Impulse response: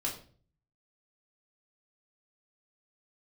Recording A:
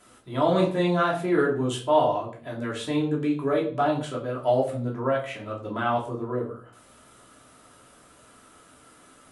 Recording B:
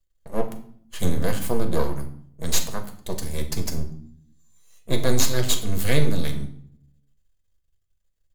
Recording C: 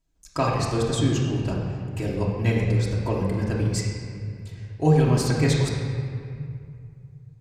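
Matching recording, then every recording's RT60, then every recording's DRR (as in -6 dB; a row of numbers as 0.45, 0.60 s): A; 0.45, 0.60, 2.3 s; -3.5, 4.5, -5.5 dB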